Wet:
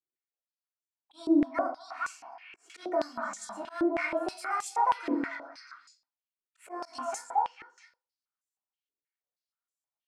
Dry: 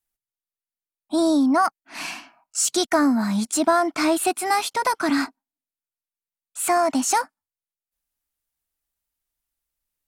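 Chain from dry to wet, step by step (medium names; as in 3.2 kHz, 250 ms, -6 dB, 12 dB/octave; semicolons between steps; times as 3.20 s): dynamic bell 3.9 kHz, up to -7 dB, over -45 dBFS, Q 2; repeats whose band climbs or falls 223 ms, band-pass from 660 Hz, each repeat 1.4 oct, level -1 dB; reverberation RT60 0.45 s, pre-delay 3 ms, DRR -1.5 dB; slow attack 103 ms; step-sequenced band-pass 6.3 Hz 360–7200 Hz; trim -5 dB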